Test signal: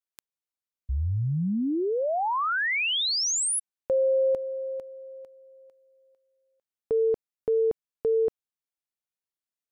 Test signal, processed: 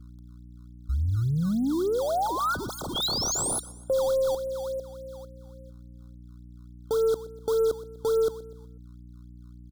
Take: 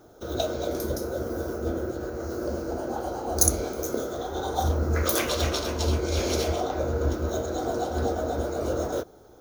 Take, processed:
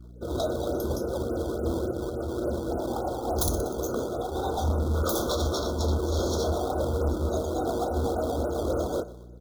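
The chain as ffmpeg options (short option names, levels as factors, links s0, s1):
-filter_complex "[0:a]afftdn=nr=22:nf=-41,aeval=exprs='0.668*(cos(1*acos(clip(val(0)/0.668,-1,1)))-cos(1*PI/2))+0.119*(cos(2*acos(clip(val(0)/0.668,-1,1)))-cos(2*PI/2))+0.237*(cos(7*acos(clip(val(0)/0.668,-1,1)))-cos(7*PI/2))':c=same,aeval=exprs='val(0)+0.00708*(sin(2*PI*60*n/s)+sin(2*PI*2*60*n/s)/2+sin(2*PI*3*60*n/s)/3+sin(2*PI*4*60*n/s)/4+sin(2*PI*5*60*n/s)/5)':c=same,aecho=1:1:123|246|369|492:0.126|0.0579|0.0266|0.0123,asplit=2[s0][s1];[s1]acrusher=samples=19:mix=1:aa=0.000001:lfo=1:lforange=30.4:lforate=3.5,volume=0.631[s2];[s0][s2]amix=inputs=2:normalize=0,aeval=exprs='0.335*(abs(mod(val(0)/0.335+3,4)-2)-1)':c=same,afftfilt=real='re*(1-between(b*sr/4096,1500,3200))':imag='im*(1-between(b*sr/4096,1500,3200))':win_size=4096:overlap=0.75,volume=0.531"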